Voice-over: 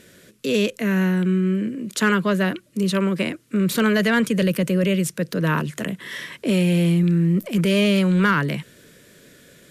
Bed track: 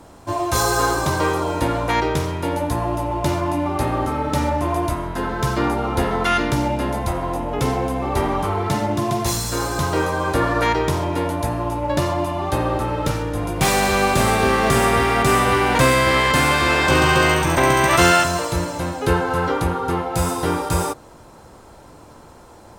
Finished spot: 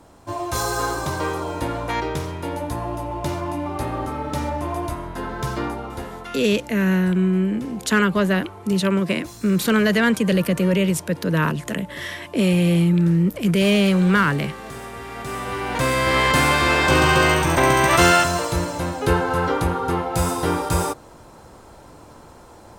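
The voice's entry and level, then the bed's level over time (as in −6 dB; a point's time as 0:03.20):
5.90 s, +1.0 dB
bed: 0:05.57 −5 dB
0:06.44 −18.5 dB
0:14.95 −18.5 dB
0:16.23 −0.5 dB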